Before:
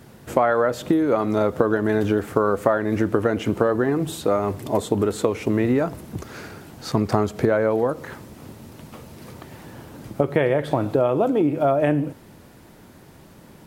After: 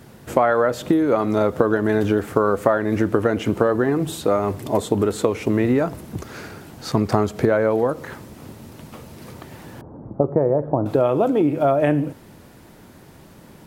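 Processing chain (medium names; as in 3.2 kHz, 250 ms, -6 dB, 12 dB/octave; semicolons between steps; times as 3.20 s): 9.81–10.86 s: inverse Chebyshev low-pass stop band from 5.6 kHz, stop band 80 dB; trim +1.5 dB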